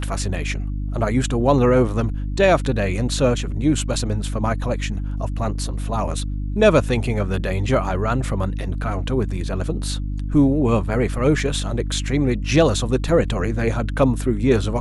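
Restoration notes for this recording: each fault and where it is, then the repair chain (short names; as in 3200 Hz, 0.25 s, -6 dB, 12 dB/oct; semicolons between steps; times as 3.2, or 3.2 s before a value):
hum 50 Hz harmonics 6 -25 dBFS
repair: de-hum 50 Hz, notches 6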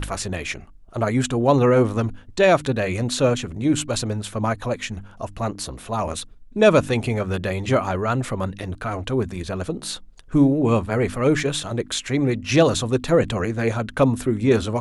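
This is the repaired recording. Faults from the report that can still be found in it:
none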